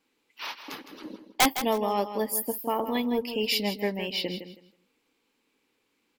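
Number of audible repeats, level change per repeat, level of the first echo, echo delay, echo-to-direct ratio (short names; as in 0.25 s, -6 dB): 2, -13.0 dB, -10.5 dB, 0.161 s, -10.5 dB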